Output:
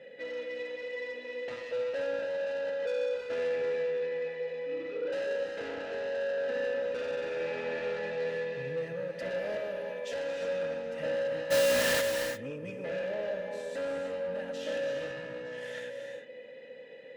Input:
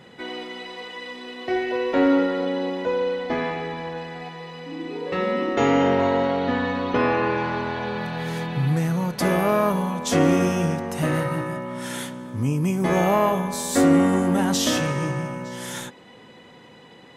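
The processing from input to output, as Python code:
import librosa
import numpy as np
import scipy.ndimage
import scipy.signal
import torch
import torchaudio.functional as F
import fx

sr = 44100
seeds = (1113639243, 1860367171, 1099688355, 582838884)

y = fx.low_shelf(x, sr, hz=440.0, db=-11.5, at=(9.57, 10.42))
y = fx.rider(y, sr, range_db=4, speed_s=0.5)
y = fx.vowel_filter(y, sr, vowel='e')
y = 10.0 ** (-35.5 / 20.0) * np.tanh(y / 10.0 ** (-35.5 / 20.0))
y = fx.quant_companded(y, sr, bits=2, at=(11.5, 12.0), fade=0.02)
y = fx.notch_comb(y, sr, f0_hz=370.0)
y = fx.room_flutter(y, sr, wall_m=10.5, rt60_s=1.2, at=(7.34, 7.99))
y = fx.rev_gated(y, sr, seeds[0], gate_ms=370, shape='rising', drr_db=5.0)
y = y * 10.0 ** (4.0 / 20.0)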